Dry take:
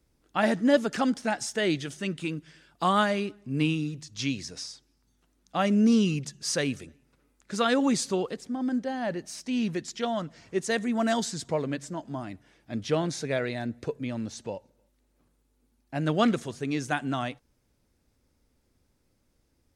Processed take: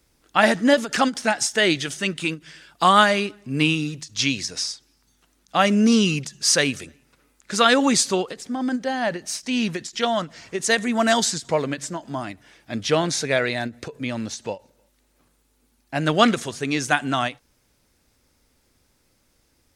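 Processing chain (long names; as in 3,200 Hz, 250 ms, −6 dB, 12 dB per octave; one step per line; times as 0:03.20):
tilt shelving filter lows −4.5 dB, about 680 Hz
every ending faded ahead of time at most 300 dB per second
level +7.5 dB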